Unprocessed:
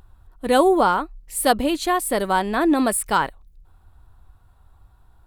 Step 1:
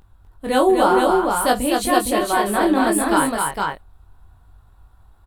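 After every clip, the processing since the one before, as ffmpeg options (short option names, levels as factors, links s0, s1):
-filter_complex "[0:a]flanger=delay=20:depth=4.1:speed=0.62,asplit=2[s0][s1];[s1]aecho=0:1:48|249|270|462:0.126|0.631|0.133|0.708[s2];[s0][s2]amix=inputs=2:normalize=0,volume=1.33"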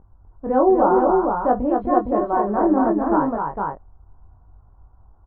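-af "lowpass=f=1100:w=0.5412,lowpass=f=1100:w=1.3066"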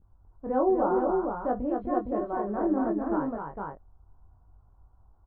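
-af "adynamicequalizer=threshold=0.02:dfrequency=930:dqfactor=1.8:tfrequency=930:tqfactor=1.8:attack=5:release=100:ratio=0.375:range=3:mode=cutabove:tftype=bell,volume=0.398"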